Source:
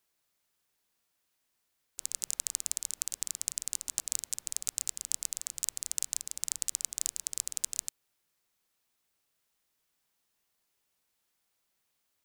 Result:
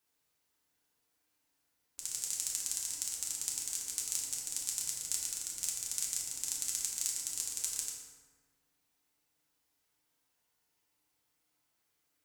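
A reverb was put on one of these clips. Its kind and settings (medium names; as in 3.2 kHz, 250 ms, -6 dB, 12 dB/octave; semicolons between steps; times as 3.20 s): FDN reverb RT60 1.5 s, low-frequency decay 1.25×, high-frequency decay 0.55×, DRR -4 dB; trim -5 dB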